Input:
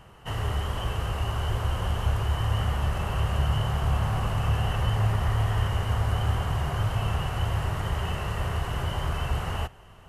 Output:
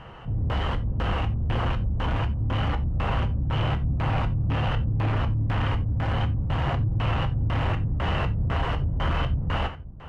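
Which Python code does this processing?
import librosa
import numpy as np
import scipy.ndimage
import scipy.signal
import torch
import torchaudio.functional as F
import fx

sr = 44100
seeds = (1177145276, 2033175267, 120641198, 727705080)

p1 = fx.rattle_buzz(x, sr, strikes_db=-23.0, level_db=-30.0)
p2 = fx.rider(p1, sr, range_db=4, speed_s=0.5)
p3 = p1 + (p2 * 10.0 ** (-1.5 / 20.0))
p4 = np.clip(p3, -10.0 ** (-21.0 / 20.0), 10.0 ** (-21.0 / 20.0))
p5 = p4 + fx.echo_wet_lowpass(p4, sr, ms=245, feedback_pct=61, hz=2900.0, wet_db=-18.0, dry=0)
p6 = fx.filter_lfo_lowpass(p5, sr, shape='square', hz=2.0, low_hz=210.0, high_hz=3000.0, q=0.84)
y = fx.rev_gated(p6, sr, seeds[0], gate_ms=110, shape='falling', drr_db=6.0)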